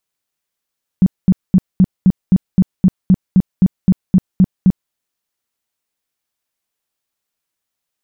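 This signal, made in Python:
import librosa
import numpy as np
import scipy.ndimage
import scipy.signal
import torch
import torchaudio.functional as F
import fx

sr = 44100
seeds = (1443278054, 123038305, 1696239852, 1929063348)

y = fx.tone_burst(sr, hz=186.0, cycles=8, every_s=0.26, bursts=15, level_db=-5.0)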